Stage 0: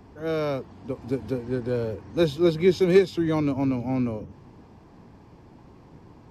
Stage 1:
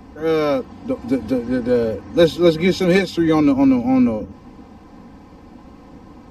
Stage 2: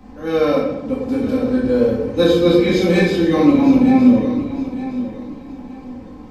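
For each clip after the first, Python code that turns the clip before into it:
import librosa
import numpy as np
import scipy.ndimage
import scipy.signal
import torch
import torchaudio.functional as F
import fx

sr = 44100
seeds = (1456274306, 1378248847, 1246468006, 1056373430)

y1 = x + 0.69 * np.pad(x, (int(3.9 * sr / 1000.0), 0))[:len(x)]
y1 = F.gain(torch.from_numpy(y1), 7.0).numpy()
y2 = fx.echo_feedback(y1, sr, ms=915, feedback_pct=29, wet_db=-13.0)
y2 = fx.room_shoebox(y2, sr, seeds[0], volume_m3=350.0, walls='mixed', distance_m=2.3)
y2 = F.gain(torch.from_numpy(y2), -6.0).numpy()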